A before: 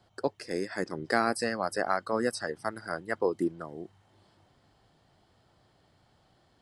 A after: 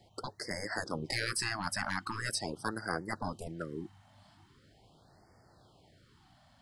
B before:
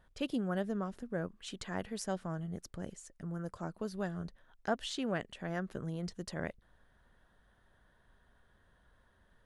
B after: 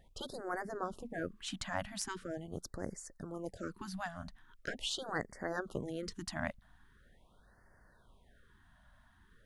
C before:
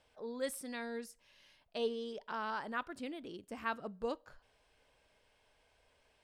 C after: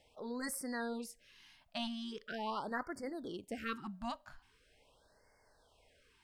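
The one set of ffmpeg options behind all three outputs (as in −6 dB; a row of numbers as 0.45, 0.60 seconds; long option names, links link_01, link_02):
-af "aeval=exprs='0.355*(cos(1*acos(clip(val(0)/0.355,-1,1)))-cos(1*PI/2))+0.0141*(cos(3*acos(clip(val(0)/0.355,-1,1)))-cos(3*PI/2))+0.00708*(cos(8*acos(clip(val(0)/0.355,-1,1)))-cos(8*PI/2))':channel_layout=same,afftfilt=real='re*lt(hypot(re,im),0.0794)':imag='im*lt(hypot(re,im),0.0794)':win_size=1024:overlap=0.75,afftfilt=real='re*(1-between(b*sr/1024,390*pow(3200/390,0.5+0.5*sin(2*PI*0.42*pts/sr))/1.41,390*pow(3200/390,0.5+0.5*sin(2*PI*0.42*pts/sr))*1.41))':imag='im*(1-between(b*sr/1024,390*pow(3200/390,0.5+0.5*sin(2*PI*0.42*pts/sr))/1.41,390*pow(3200/390,0.5+0.5*sin(2*PI*0.42*pts/sr))*1.41))':win_size=1024:overlap=0.75,volume=4.5dB"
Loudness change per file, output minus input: −5.0, −2.0, −0.5 LU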